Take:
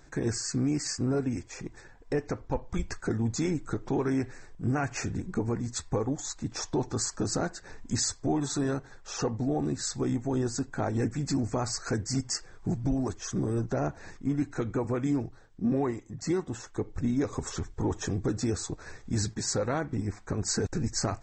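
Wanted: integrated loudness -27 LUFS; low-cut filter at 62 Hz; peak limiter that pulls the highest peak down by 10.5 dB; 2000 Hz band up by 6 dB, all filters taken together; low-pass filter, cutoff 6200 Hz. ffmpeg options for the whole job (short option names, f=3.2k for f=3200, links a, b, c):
-af "highpass=62,lowpass=6.2k,equalizer=f=2k:t=o:g=8,volume=8.5dB,alimiter=limit=-17dB:level=0:latency=1"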